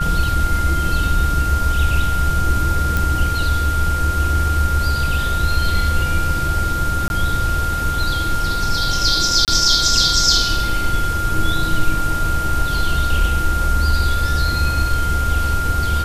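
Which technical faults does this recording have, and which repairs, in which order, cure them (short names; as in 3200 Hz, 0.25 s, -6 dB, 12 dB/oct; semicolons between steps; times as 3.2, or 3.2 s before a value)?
tone 1400 Hz -21 dBFS
2.97 pop
7.08–7.1 gap 21 ms
9.45–9.48 gap 28 ms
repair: de-click; notch 1400 Hz, Q 30; interpolate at 7.08, 21 ms; interpolate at 9.45, 28 ms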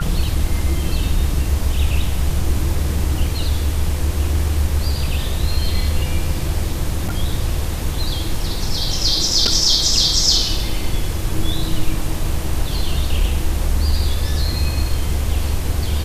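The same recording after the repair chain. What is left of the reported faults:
none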